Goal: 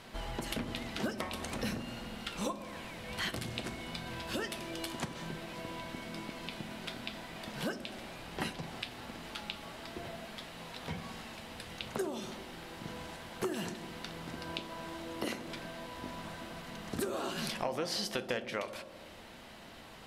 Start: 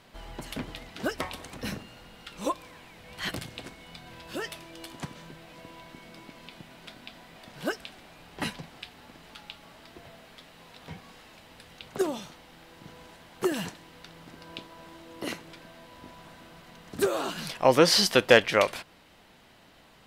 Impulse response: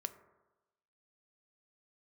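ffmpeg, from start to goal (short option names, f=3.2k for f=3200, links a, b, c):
-filter_complex "[0:a]acompressor=threshold=-38dB:ratio=8[a];[1:a]atrim=start_sample=2205,asetrate=25137,aresample=44100[b];[a][b]afir=irnorm=-1:irlink=0,volume=4dB"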